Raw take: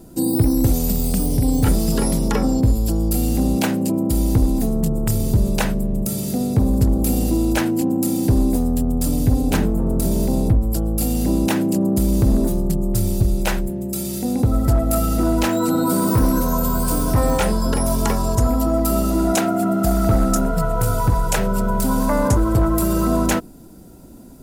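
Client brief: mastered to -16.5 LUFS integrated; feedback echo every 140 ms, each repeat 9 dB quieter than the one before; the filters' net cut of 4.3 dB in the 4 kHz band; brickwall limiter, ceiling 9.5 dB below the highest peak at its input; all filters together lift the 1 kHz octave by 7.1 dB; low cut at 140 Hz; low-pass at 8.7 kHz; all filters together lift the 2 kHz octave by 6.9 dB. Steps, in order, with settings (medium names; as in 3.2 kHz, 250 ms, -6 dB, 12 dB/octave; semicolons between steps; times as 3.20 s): high-pass 140 Hz; low-pass 8.7 kHz; peaking EQ 1 kHz +7 dB; peaking EQ 2 kHz +8.5 dB; peaking EQ 4 kHz -9 dB; peak limiter -12.5 dBFS; feedback delay 140 ms, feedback 35%, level -9 dB; trim +4.5 dB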